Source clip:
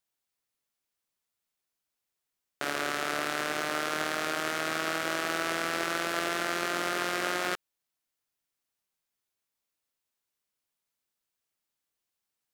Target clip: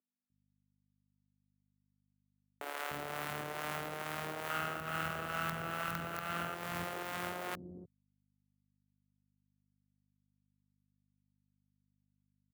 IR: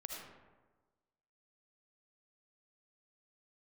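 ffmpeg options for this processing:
-filter_complex "[0:a]asettb=1/sr,asplit=3[s0][s1][s2];[s0]atrim=end=4.504[s3];[s1]atrim=start=4.5:end=6.55,asetpts=PTS-STARTPTS,afade=t=in:d=0.004:c=qsin,afade=t=out:st=2.046:d=0.004:c=qsin,equalizer=f=1300:t=o:w=0.93:g=11.5[s4];[s2]atrim=start=6.546[s5];[s3][s4]acrossfade=d=0.004:c1=hsin:c2=qsin[s6];[s6][s5]acrossfade=d=0.004:c1=qsin:c2=hsin,aecho=1:1:312|624|936:0.0631|0.0328|0.0171,acrusher=bits=3:dc=4:mix=0:aa=0.000001,equalizer=f=5200:t=o:w=2.5:g=-12,alimiter=limit=0.112:level=0:latency=1:release=391,acrossover=split=670[s7][s8];[s7]aeval=exprs='val(0)*(1-0.5/2+0.5/2*cos(2*PI*2.3*n/s))':c=same[s9];[s8]aeval=exprs='val(0)*(1-0.5/2-0.5/2*cos(2*PI*2.3*n/s))':c=same[s10];[s9][s10]amix=inputs=2:normalize=0,aeval=exprs='val(0)+0.000251*(sin(2*PI*50*n/s)+sin(2*PI*2*50*n/s)/2+sin(2*PI*3*50*n/s)/3+sin(2*PI*4*50*n/s)/4+sin(2*PI*5*50*n/s)/5)':c=same,highpass=110,acrossover=split=330[s11][s12];[s11]adelay=300[s13];[s13][s12]amix=inputs=2:normalize=0"

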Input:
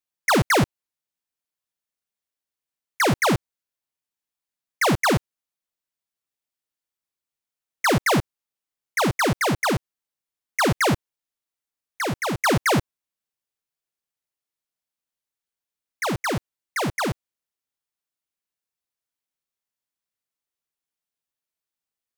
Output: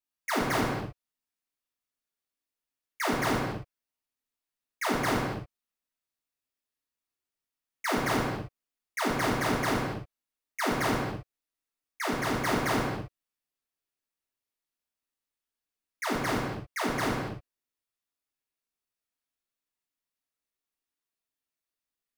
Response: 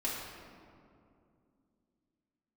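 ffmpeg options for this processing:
-filter_complex "[0:a]equalizer=f=810:t=o:w=0.77:g=-3,asoftclip=type=tanh:threshold=0.0562[s0];[1:a]atrim=start_sample=2205,afade=t=out:st=0.33:d=0.01,atrim=end_sample=14994[s1];[s0][s1]afir=irnorm=-1:irlink=0,volume=0.596"

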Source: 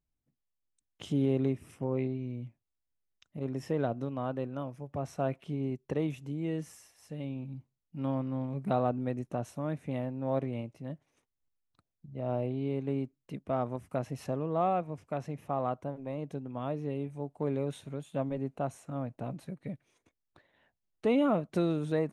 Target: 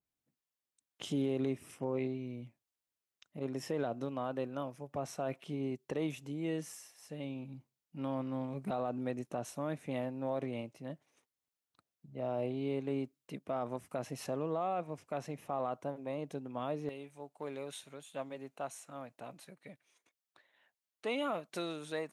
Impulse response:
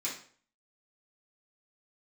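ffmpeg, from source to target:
-af "asetnsamples=n=441:p=0,asendcmd='16.89 highpass f 1300',highpass=f=320:p=1,alimiter=level_in=1.33:limit=0.0631:level=0:latency=1:release=34,volume=0.75,adynamicequalizer=threshold=0.00178:dfrequency=3000:dqfactor=0.7:tfrequency=3000:tqfactor=0.7:attack=5:release=100:ratio=0.375:range=2:mode=boostabove:tftype=highshelf,volume=1.12"

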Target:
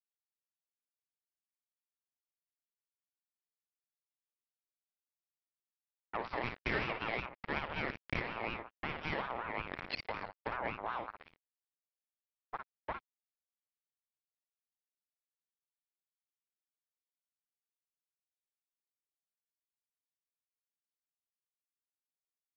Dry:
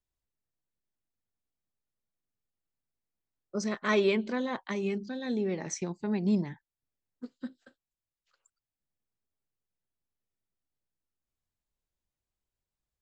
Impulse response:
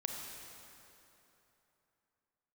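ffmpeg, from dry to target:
-filter_complex "[0:a]adynamicequalizer=threshold=0.00562:dfrequency=1700:dqfactor=0.7:tfrequency=1700:tqfactor=0.7:attack=5:release=100:ratio=0.375:range=3.5:mode=boostabove:tftype=bell,acompressor=threshold=0.0126:ratio=8,aecho=1:1:80|160|240|320:0.119|0.0618|0.0321|0.0167,aresample=16000,acrusher=bits=5:mix=0:aa=0.5,aresample=44100,asplit=2[s0][s1];[s1]adelay=32,volume=0.473[s2];[s0][s2]amix=inputs=2:normalize=0,asetrate=25442,aresample=44100,equalizer=f=1300:t=o:w=1.1:g=9.5,aeval=exprs='val(0)*sin(2*PI*960*n/s+960*0.3/5.4*sin(2*PI*5.4*n/s))':c=same,volume=1.26"

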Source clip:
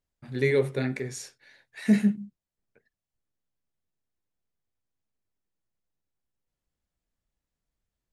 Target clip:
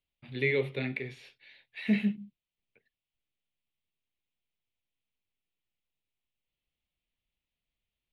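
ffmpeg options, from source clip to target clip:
-filter_complex "[0:a]acrossover=split=2800[s0][s1];[s1]acompressor=threshold=0.00501:ratio=4:attack=1:release=60[s2];[s0][s2]amix=inputs=2:normalize=0,equalizer=f=7700:w=0.99:g=-14.5,acrossover=split=370|3200[s3][s4][s5];[s4]aexciter=amount=14.8:drive=4.4:freq=2400[s6];[s3][s6][s5]amix=inputs=3:normalize=0,volume=0.501"

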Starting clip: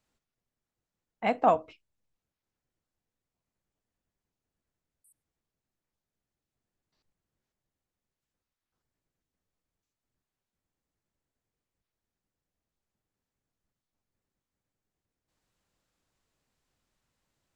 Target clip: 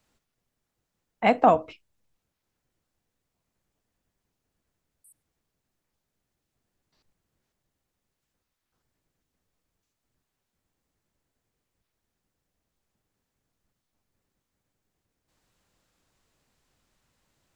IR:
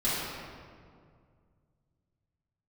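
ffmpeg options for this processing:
-filter_complex "[0:a]acrossover=split=390[s0][s1];[s1]acompressor=threshold=0.0794:ratio=6[s2];[s0][s2]amix=inputs=2:normalize=0,volume=2.37"

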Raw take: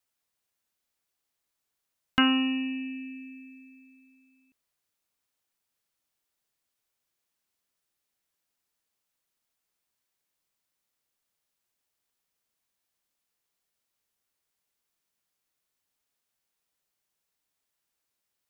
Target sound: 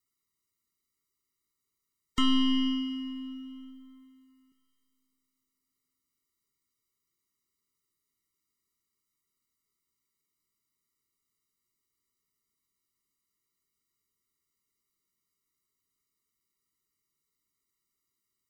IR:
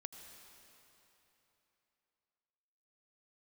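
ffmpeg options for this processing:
-filter_complex "[0:a]equalizer=f=1000:t=o:w=0.33:g=-5,equalizer=f=1600:t=o:w=0.33:g=-6,equalizer=f=3150:t=o:w=0.33:g=-8,alimiter=limit=0.0841:level=0:latency=1:release=484,aeval=exprs='0.0841*(cos(1*acos(clip(val(0)/0.0841,-1,1)))-cos(1*PI/2))+0.0106*(cos(3*acos(clip(val(0)/0.0841,-1,1)))-cos(3*PI/2))+0.0335*(cos(4*acos(clip(val(0)/0.0841,-1,1)))-cos(4*PI/2))+0.00473*(cos(6*acos(clip(val(0)/0.0841,-1,1)))-cos(6*PI/2))+0.000596*(cos(8*acos(clip(val(0)/0.0841,-1,1)))-cos(8*PI/2))':c=same,asplit=2[s0][s1];[1:a]atrim=start_sample=2205[s2];[s1][s2]afir=irnorm=-1:irlink=0,volume=1.06[s3];[s0][s3]amix=inputs=2:normalize=0,afftfilt=real='re*eq(mod(floor(b*sr/1024/460),2),0)':imag='im*eq(mod(floor(b*sr/1024/460),2),0)':win_size=1024:overlap=0.75,volume=1.33"

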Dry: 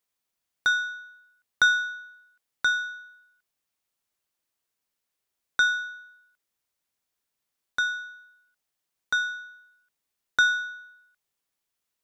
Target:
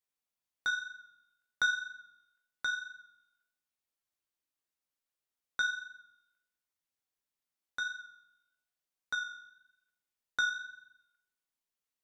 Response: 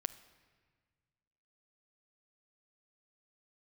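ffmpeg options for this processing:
-filter_complex "[0:a]flanger=delay=9.4:depth=7.9:regen=41:speed=1:shape=triangular[s0];[1:a]atrim=start_sample=2205,asetrate=83790,aresample=44100[s1];[s0][s1]afir=irnorm=-1:irlink=0,volume=1.19"

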